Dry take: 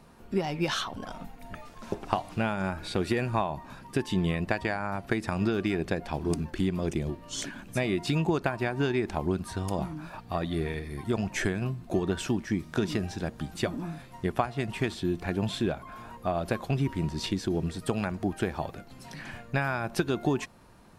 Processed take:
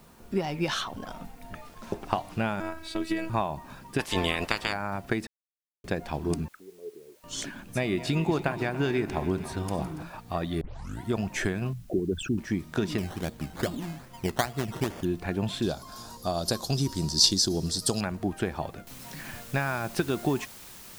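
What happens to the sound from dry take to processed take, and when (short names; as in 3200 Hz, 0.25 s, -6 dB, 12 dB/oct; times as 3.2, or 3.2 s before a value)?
2.6–3.3 robotiser 324 Hz
3.98–4.72 spectral limiter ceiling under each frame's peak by 24 dB
5.27–5.84 mute
6.48–7.24 auto-wah 430–3000 Hz, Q 19, down, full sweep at -28 dBFS
7.78–10.03 regenerating reverse delay 0.142 s, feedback 73%, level -13.5 dB
10.61 tape start 0.44 s
11.73–12.38 formant sharpening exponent 3
12.98–15.05 decimation with a swept rate 15×, swing 60% 2.4 Hz
15.62–18.01 resonant high shelf 3400 Hz +13.5 dB, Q 3
18.87 noise floor step -63 dB -47 dB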